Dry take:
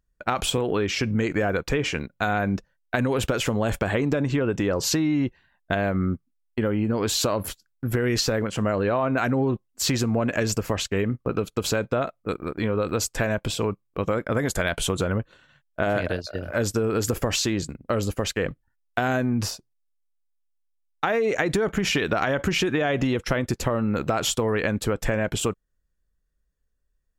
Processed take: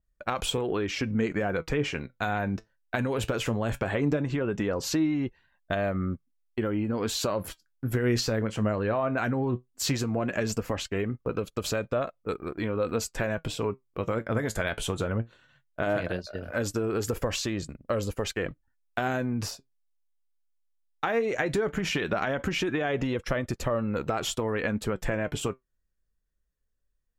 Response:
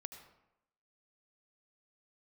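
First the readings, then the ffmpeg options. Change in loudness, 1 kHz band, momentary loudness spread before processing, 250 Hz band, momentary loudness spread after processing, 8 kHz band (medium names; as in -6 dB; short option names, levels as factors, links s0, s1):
-4.5 dB, -4.5 dB, 6 LU, -4.5 dB, 7 LU, -7.0 dB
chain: -af "flanger=delay=1.6:depth=7.7:regen=68:speed=0.17:shape=sinusoidal,adynamicequalizer=threshold=0.00501:dfrequency=3300:dqfactor=0.7:tfrequency=3300:tqfactor=0.7:attack=5:release=100:ratio=0.375:range=2:mode=cutabove:tftype=highshelf"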